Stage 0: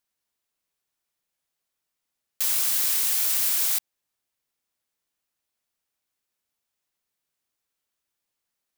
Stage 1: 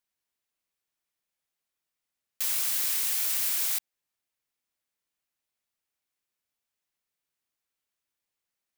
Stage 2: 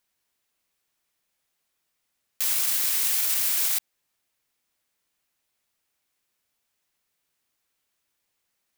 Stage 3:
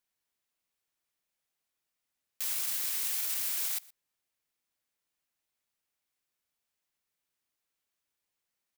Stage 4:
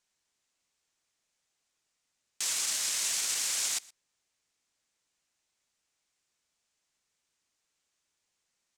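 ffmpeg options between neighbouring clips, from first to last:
-af "equalizer=f=2.2k:w=1.5:g=2.5,volume=-4.5dB"
-af "alimiter=limit=-23.5dB:level=0:latency=1:release=32,volume=9dB"
-af "aecho=1:1:120:0.0708,volume=-8.5dB"
-af "lowpass=f=7.2k:t=q:w=1.8,volume=5dB"

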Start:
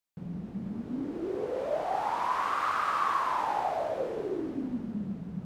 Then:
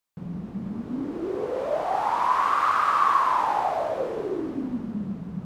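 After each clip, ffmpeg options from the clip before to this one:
-af "equalizer=f=1.1k:t=o:w=0.54:g=4.5,volume=4dB"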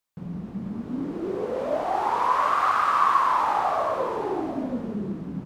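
-af "aecho=1:1:721:0.335"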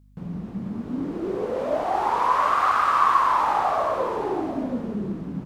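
-af "aeval=exprs='val(0)+0.002*(sin(2*PI*50*n/s)+sin(2*PI*2*50*n/s)/2+sin(2*PI*3*50*n/s)/3+sin(2*PI*4*50*n/s)/4+sin(2*PI*5*50*n/s)/5)':c=same,volume=1.5dB"

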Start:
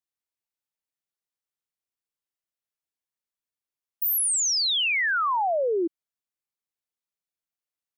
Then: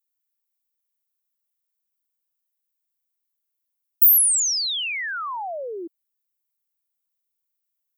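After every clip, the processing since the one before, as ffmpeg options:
-af "aemphasis=mode=production:type=bsi,volume=-5.5dB"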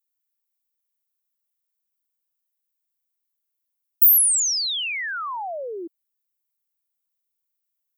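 -af anull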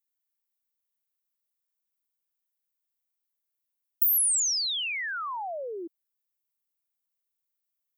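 -af "acompressor=threshold=-17dB:ratio=6,volume=-4dB"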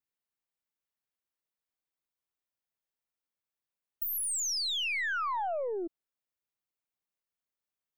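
-af "lowpass=f=2.6k:p=1,aeval=exprs='0.0398*(cos(1*acos(clip(val(0)/0.0398,-1,1)))-cos(1*PI/2))+0.00224*(cos(4*acos(clip(val(0)/0.0398,-1,1)))-cos(4*PI/2))':c=same,volume=2dB"

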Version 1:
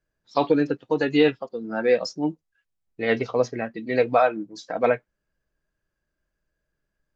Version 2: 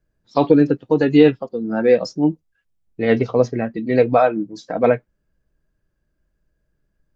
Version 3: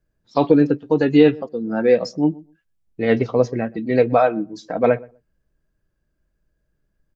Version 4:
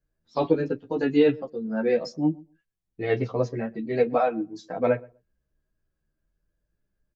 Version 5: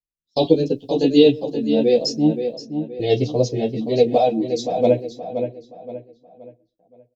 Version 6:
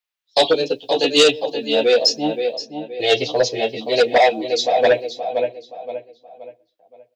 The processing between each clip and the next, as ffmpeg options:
-af "lowshelf=f=480:g=11.5"
-filter_complex "[0:a]asplit=2[a][b];[b]adelay=124,lowpass=f=1k:p=1,volume=-22dB,asplit=2[c][d];[d]adelay=124,lowpass=f=1k:p=1,volume=0.17[e];[a][c][e]amix=inputs=3:normalize=0,volume=-1dB"
-filter_complex "[0:a]asplit=2[a][b];[b]adelay=10.4,afreqshift=0.5[c];[a][c]amix=inputs=2:normalize=1,volume=-3.5dB"
-filter_complex "[0:a]agate=range=-29dB:threshold=-47dB:ratio=16:detection=peak,firequalizer=gain_entry='entry(720,0);entry(1300,-27);entry(3200,10)':delay=0.05:min_phase=1,asplit=2[a][b];[b]adelay=523,lowpass=f=3.2k:p=1,volume=-8dB,asplit=2[c][d];[d]adelay=523,lowpass=f=3.2k:p=1,volume=0.37,asplit=2[e][f];[f]adelay=523,lowpass=f=3.2k:p=1,volume=0.37,asplit=2[g][h];[h]adelay=523,lowpass=f=3.2k:p=1,volume=0.37[i];[c][e][g][i]amix=inputs=4:normalize=0[j];[a][j]amix=inputs=2:normalize=0,volume=6.5dB"
-filter_complex "[0:a]acrossover=split=530 3600:gain=0.0891 1 0.0708[a][b][c];[a][b][c]amix=inputs=3:normalize=0,aeval=exprs='0.335*sin(PI/2*1.78*val(0)/0.335)':c=same,crystalizer=i=5:c=0"

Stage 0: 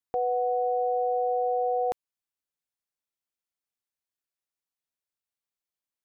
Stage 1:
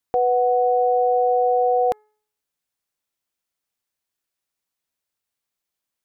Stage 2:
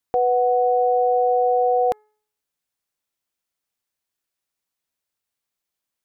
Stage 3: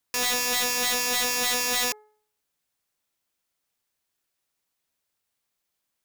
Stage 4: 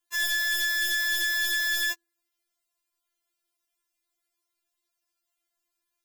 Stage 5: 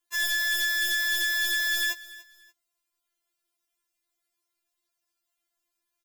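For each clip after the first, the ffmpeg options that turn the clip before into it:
-af "bandreject=f=425:t=h:w=4,bandreject=f=850:t=h:w=4,bandreject=f=1.275k:t=h:w=4,bandreject=f=1.7k:t=h:w=4,bandreject=f=2.125k:t=h:w=4,volume=8dB"
-af anull
-af "aeval=exprs='(mod(15.8*val(0)+1,2)-1)/15.8':c=same,volume=3.5dB"
-af "afftfilt=real='re*4*eq(mod(b,16),0)':imag='im*4*eq(mod(b,16),0)':win_size=2048:overlap=0.75"
-af "aecho=1:1:291|582:0.112|0.0325"

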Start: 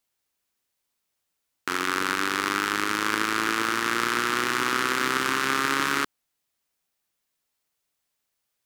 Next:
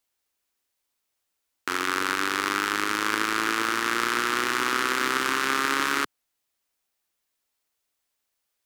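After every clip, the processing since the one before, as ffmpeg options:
-af "equalizer=f=150:w=2:g=-9"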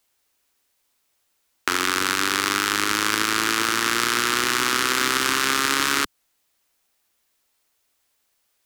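-filter_complex "[0:a]acrossover=split=170|3000[a][b][c];[b]acompressor=threshold=-29dB:ratio=6[d];[a][d][c]amix=inputs=3:normalize=0,volume=9dB"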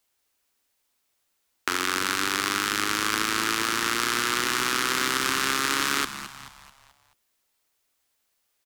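-filter_complex "[0:a]asplit=6[a][b][c][d][e][f];[b]adelay=217,afreqshift=-76,volume=-12dB[g];[c]adelay=434,afreqshift=-152,volume=-18.7dB[h];[d]adelay=651,afreqshift=-228,volume=-25.5dB[i];[e]adelay=868,afreqshift=-304,volume=-32.2dB[j];[f]adelay=1085,afreqshift=-380,volume=-39dB[k];[a][g][h][i][j][k]amix=inputs=6:normalize=0,volume=-4dB"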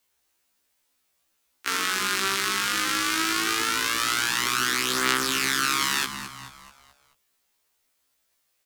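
-filter_complex "[0:a]acrossover=split=1500[a][b];[a]alimiter=limit=-23.5dB:level=0:latency=1[c];[c][b]amix=inputs=2:normalize=0,afftfilt=real='re*1.73*eq(mod(b,3),0)':imag='im*1.73*eq(mod(b,3),0)':win_size=2048:overlap=0.75,volume=4dB"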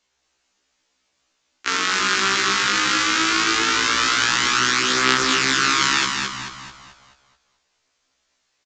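-filter_complex "[0:a]asplit=2[a][b];[b]aecho=0:1:219|438|657|876:0.562|0.186|0.0612|0.0202[c];[a][c]amix=inputs=2:normalize=0,aresample=16000,aresample=44100,volume=5dB"

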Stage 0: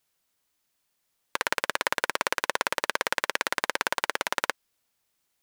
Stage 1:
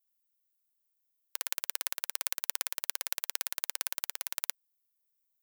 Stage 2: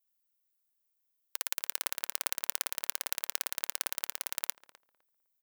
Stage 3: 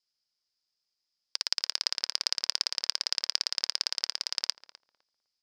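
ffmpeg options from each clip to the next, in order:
-af "aeval=exprs='0.794*(cos(1*acos(clip(val(0)/0.794,-1,1)))-cos(1*PI/2))+0.2*(cos(2*acos(clip(val(0)/0.794,-1,1)))-cos(2*PI/2))+0.2*(cos(3*acos(clip(val(0)/0.794,-1,1)))-cos(3*PI/2))+0.0178*(cos(5*acos(clip(val(0)/0.794,-1,1)))-cos(5*PI/2))':c=same,aemphasis=mode=production:type=riaa,volume=-15.5dB"
-filter_complex "[0:a]asplit=2[a][b];[b]adelay=254,lowpass=f=1.3k:p=1,volume=-12.5dB,asplit=2[c][d];[d]adelay=254,lowpass=f=1.3k:p=1,volume=0.23,asplit=2[e][f];[f]adelay=254,lowpass=f=1.3k:p=1,volume=0.23[g];[a][c][e][g]amix=inputs=4:normalize=0"
-af "lowpass=f=5k:t=q:w=11"

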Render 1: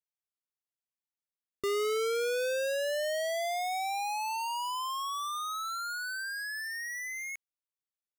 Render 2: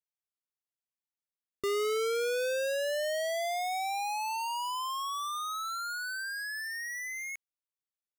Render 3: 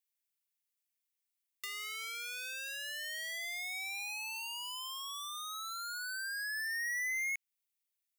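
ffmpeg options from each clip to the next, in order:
-af anull
-filter_complex "[0:a]acrossover=split=3000|7600[a][b][c];[a]acompressor=threshold=-35dB:ratio=4[d];[b]acompressor=threshold=-53dB:ratio=4[e];[c]acompressor=threshold=-58dB:ratio=4[f];[d][e][f]amix=inputs=3:normalize=0,highpass=f=2.1k:t=q:w=1.9,crystalizer=i=2:c=0,volume=-3dB"

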